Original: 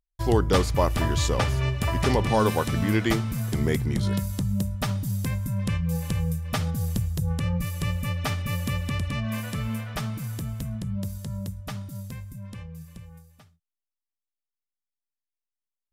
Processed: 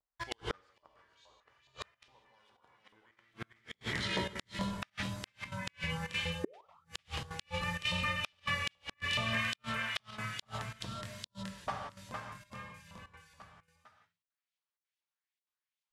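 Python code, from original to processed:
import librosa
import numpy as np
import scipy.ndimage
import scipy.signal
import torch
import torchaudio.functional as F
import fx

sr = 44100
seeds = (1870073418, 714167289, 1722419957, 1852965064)

p1 = fx.high_shelf(x, sr, hz=3900.0, db=6.0)
p2 = p1 + fx.echo_single(p1, sr, ms=452, db=-6.0, dry=0)
p3 = fx.filter_lfo_bandpass(p2, sr, shape='saw_up', hz=2.4, low_hz=860.0, high_hz=3500.0, q=2.0)
p4 = scipy.signal.sosfilt(scipy.signal.butter(2, 9800.0, 'lowpass', fs=sr, output='sos'), p3)
p5 = fx.low_shelf(p4, sr, hz=110.0, db=11.5)
p6 = fx.hum_notches(p5, sr, base_hz=50, count=8)
p7 = fx.spec_paint(p6, sr, seeds[0], shape='rise', start_s=6.44, length_s=0.23, low_hz=340.0, high_hz=1400.0, level_db=-23.0)
p8 = fx.vibrato(p7, sr, rate_hz=0.66, depth_cents=49.0)
p9 = fx.rev_gated(p8, sr, seeds[1], gate_ms=200, shape='flat', drr_db=2.0)
p10 = fx.step_gate(p9, sr, bpm=193, pattern='xxx.xxxxxx.xxxx', floor_db=-12.0, edge_ms=4.5)
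p11 = fx.gate_flip(p10, sr, shuts_db=-26.0, range_db=-40)
y = F.gain(torch.from_numpy(p11), 5.5).numpy()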